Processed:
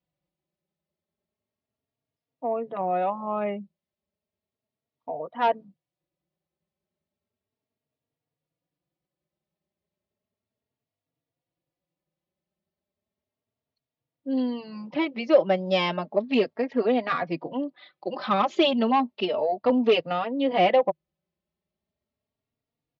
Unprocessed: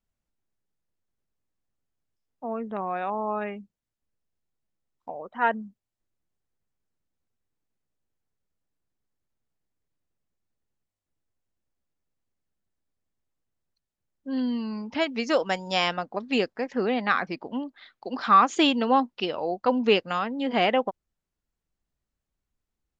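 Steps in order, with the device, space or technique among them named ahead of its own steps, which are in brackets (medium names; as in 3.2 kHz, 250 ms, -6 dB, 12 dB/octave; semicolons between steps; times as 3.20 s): 14.94–15.68 s: treble shelf 4.4 kHz -10 dB; barber-pole flanger into a guitar amplifier (endless flanger 3.6 ms +0.34 Hz; saturation -18.5 dBFS, distortion -15 dB; cabinet simulation 93–4500 Hz, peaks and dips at 160 Hz +8 dB, 360 Hz +4 dB, 600 Hz +9 dB, 1.5 kHz -7 dB); trim +3.5 dB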